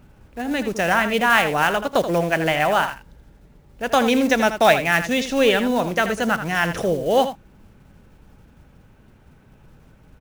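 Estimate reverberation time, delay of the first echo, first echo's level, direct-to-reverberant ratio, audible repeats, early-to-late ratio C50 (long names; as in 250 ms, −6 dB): no reverb audible, 81 ms, −10.5 dB, no reverb audible, 1, no reverb audible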